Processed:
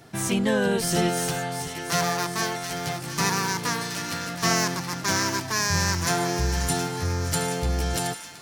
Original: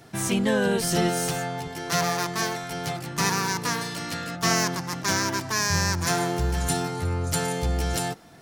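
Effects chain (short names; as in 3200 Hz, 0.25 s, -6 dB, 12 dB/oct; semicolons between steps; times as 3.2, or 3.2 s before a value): thin delay 0.722 s, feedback 59%, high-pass 1600 Hz, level -8.5 dB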